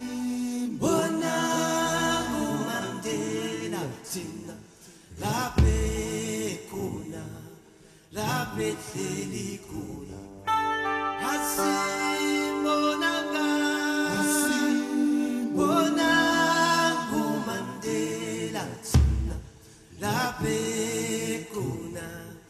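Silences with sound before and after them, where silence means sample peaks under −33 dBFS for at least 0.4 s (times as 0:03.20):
0:04.53–0:05.18
0:07.40–0:08.16
0:19.38–0:20.01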